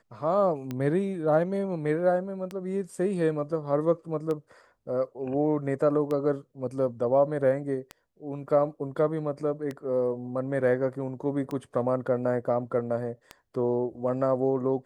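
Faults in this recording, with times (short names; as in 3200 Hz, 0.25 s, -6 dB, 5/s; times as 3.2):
tick 33 1/3 rpm -20 dBFS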